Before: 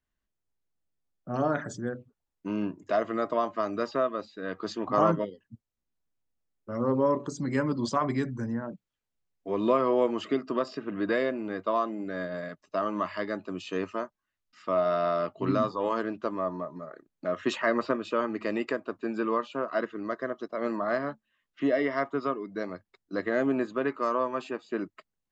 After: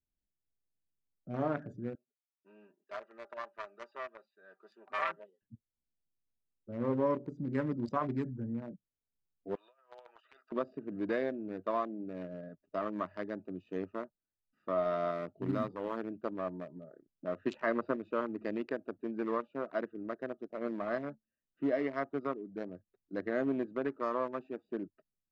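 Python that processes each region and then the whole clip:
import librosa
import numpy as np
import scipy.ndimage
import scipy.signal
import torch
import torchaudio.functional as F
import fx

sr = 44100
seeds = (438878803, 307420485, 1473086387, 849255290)

y = fx.chain(x, sr, fx.self_delay(depth_ms=0.23),
    fx.highpass(hz=1200.0, slope=12),
    fx.comb(ms=5.1, depth=0.75), at=(1.95, 5.42))
y = fx.chain(y, sr, fx.highpass(hz=1100.0, slope=24),
    fx.dynamic_eq(hz=3500.0, q=1.6, threshold_db=-53.0, ratio=4.0, max_db=6),
    fx.over_compress(threshold_db=-42.0, ratio=-1.0), at=(9.55, 10.52))
y = fx.chain(y, sr, fx.block_float(bits=7),
    fx.peak_eq(hz=690.0, db=-3.0, octaves=1.9), at=(15.11, 16.12))
y = fx.wiener(y, sr, points=41)
y = fx.high_shelf(y, sr, hz=5300.0, db=-11.0)
y = y * librosa.db_to_amplitude(-5.0)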